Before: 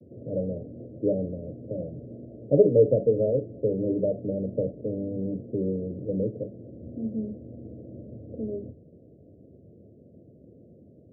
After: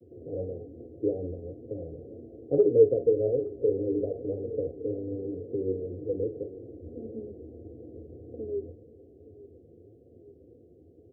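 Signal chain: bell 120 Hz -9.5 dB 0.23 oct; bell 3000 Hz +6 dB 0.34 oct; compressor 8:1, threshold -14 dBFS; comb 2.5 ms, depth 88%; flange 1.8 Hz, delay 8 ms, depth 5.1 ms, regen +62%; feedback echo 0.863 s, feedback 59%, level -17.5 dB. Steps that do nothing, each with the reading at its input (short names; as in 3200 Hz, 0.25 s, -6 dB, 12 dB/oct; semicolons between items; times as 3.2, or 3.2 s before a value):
bell 3000 Hz: input band ends at 720 Hz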